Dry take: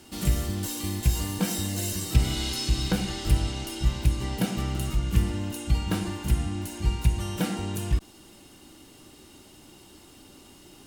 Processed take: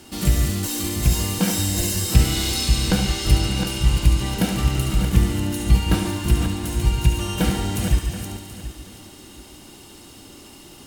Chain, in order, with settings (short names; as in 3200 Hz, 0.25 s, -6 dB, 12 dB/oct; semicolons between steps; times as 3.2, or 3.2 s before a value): regenerating reverse delay 0.364 s, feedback 42%, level -7 dB; on a send: thinning echo 71 ms, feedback 76%, high-pass 1000 Hz, level -7 dB; on the sum: gain +5.5 dB